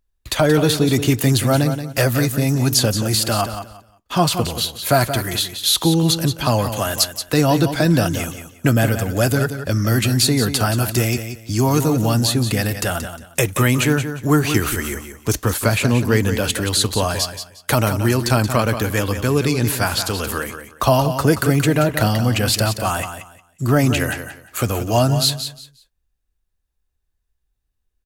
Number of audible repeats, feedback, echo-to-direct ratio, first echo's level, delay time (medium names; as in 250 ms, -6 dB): 2, 23%, -9.5 dB, -9.5 dB, 178 ms